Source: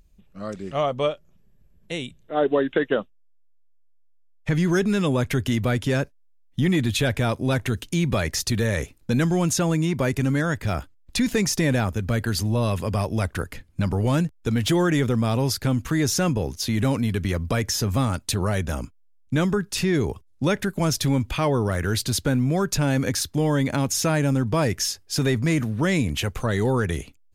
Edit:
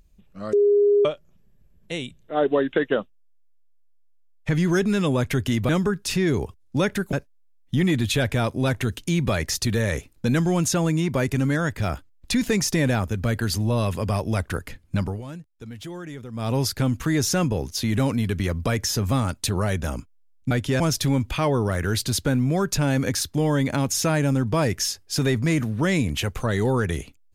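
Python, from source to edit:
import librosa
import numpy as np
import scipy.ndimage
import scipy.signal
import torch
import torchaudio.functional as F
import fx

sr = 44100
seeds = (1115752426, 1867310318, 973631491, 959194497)

y = fx.edit(x, sr, fx.bleep(start_s=0.53, length_s=0.52, hz=409.0, db=-14.0),
    fx.swap(start_s=5.69, length_s=0.29, other_s=19.36, other_length_s=1.44),
    fx.fade_down_up(start_s=13.84, length_s=1.56, db=-15.5, fade_s=0.23), tone=tone)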